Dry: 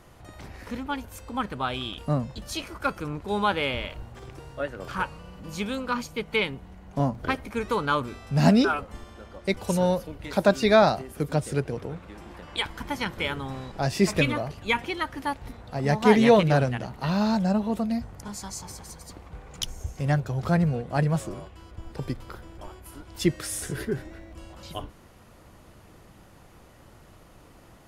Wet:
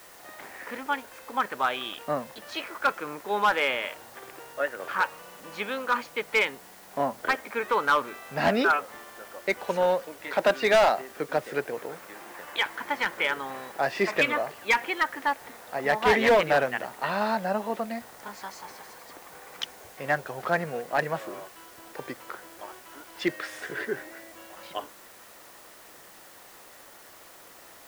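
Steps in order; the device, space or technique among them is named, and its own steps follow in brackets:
drive-through speaker (band-pass filter 480–2,800 Hz; parametric band 1,800 Hz +5.5 dB 0.46 octaves; hard clipping −19 dBFS, distortion −11 dB; white noise bed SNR 23 dB)
level +3.5 dB

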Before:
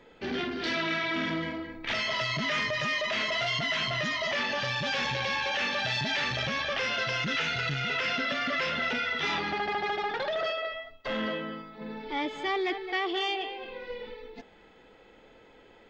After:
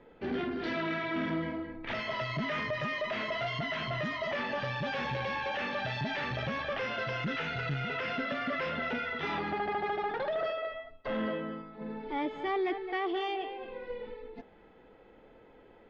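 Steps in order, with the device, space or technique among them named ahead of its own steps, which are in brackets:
through cloth (low-pass filter 6,500 Hz 12 dB per octave; high-shelf EQ 2,700 Hz −17 dB)

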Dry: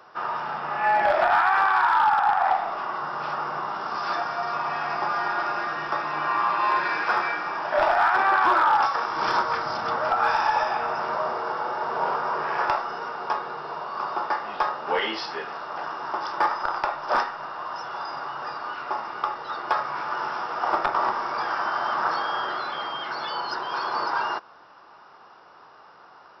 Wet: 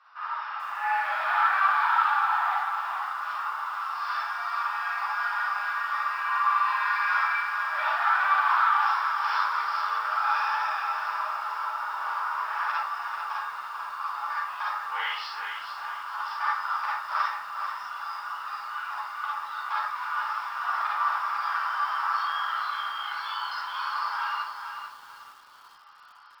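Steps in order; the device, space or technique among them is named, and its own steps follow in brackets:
Chebyshev high-pass filter 1,100 Hz, order 3
delay with a high-pass on its return 547 ms, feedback 76%, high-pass 4,600 Hz, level −14.5 dB
string-machine ensemble chorus (string-ensemble chorus; low-pass filter 4,300 Hz 12 dB per octave)
four-comb reverb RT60 0.32 s, DRR −3.5 dB
feedback echo at a low word length 441 ms, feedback 35%, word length 8 bits, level −7 dB
level −3 dB

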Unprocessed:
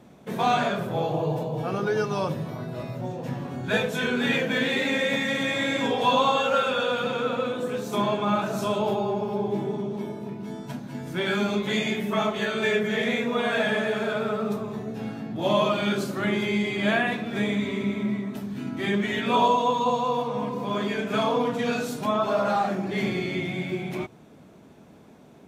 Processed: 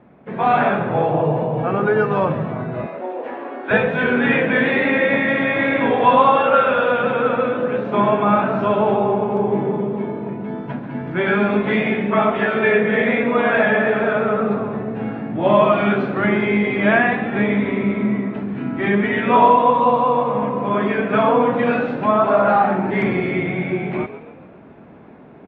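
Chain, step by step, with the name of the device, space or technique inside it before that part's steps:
0:02.86–0:03.71: Butterworth high-pass 300 Hz 36 dB per octave
low-shelf EQ 400 Hz −3 dB
echo with shifted repeats 137 ms, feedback 46%, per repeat +51 Hz, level −13 dB
action camera in a waterproof case (low-pass filter 2,300 Hz 24 dB per octave; automatic gain control gain up to 6 dB; level +3.5 dB; AAC 48 kbit/s 44,100 Hz)

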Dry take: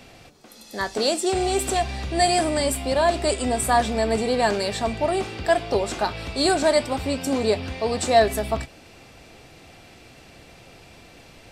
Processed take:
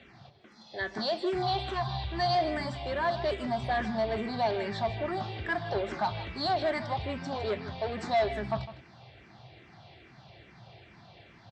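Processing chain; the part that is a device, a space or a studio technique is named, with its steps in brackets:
0:01.42–0:02.35: octave-band graphic EQ 125/250/500/1,000/2,000/4,000/8,000 Hz +6/−7/−7/+10/−7/+9/−9 dB
barber-pole phaser into a guitar amplifier (frequency shifter mixed with the dry sound −2.4 Hz; soft clipping −20 dBFS, distortion −11 dB; loudspeaker in its box 88–4,000 Hz, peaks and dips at 120 Hz +6 dB, 270 Hz −10 dB, 480 Hz −10 dB, 1,300 Hz −4 dB, 2,600 Hz −8 dB)
single-tap delay 157 ms −14.5 dB

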